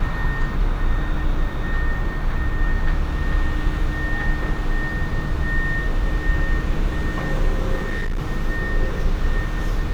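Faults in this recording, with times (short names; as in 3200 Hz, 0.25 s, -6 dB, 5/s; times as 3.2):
7.76–8.2 clipped -20 dBFS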